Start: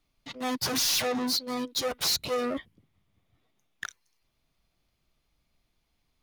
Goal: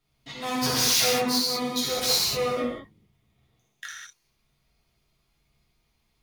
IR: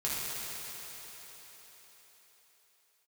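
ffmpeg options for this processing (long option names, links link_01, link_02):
-filter_complex "[0:a]asettb=1/sr,asplit=3[link_01][link_02][link_03];[link_01]atrim=end=1.564[link_04];[link_02]atrim=start=1.56:end=3.86,asetpts=PTS-STARTPTS,afade=type=in:duration=0.004:curve=qsin,afade=type=out:start_time=2.296:duration=0.004:curve=qsin,acrossover=split=1400[link_05][link_06];[link_05]adelay=60[link_07];[link_07][link_06]amix=inputs=2:normalize=0,atrim=end_sample=101430[link_08];[link_03]atrim=start=3.856[link_09];[link_04][link_08]acrossfade=duration=0.004:curve1=hsin:curve2=qsin[link_10];[link_10][link_09]acrossfade=duration=0.004:curve1=qsin:curve2=hsin[link_11];[1:a]atrim=start_sample=2205,afade=type=out:start_time=0.26:duration=0.01,atrim=end_sample=11907[link_12];[link_11][link_12]afir=irnorm=-1:irlink=0"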